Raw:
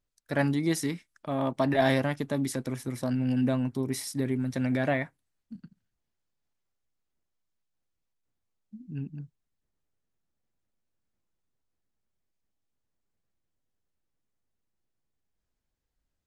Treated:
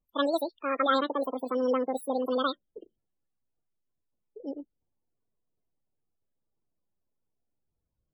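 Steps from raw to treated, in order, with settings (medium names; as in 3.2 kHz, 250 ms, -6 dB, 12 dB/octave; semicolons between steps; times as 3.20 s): speed mistake 7.5 ips tape played at 15 ips; loudest bins only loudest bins 32; vibrato 0.36 Hz 15 cents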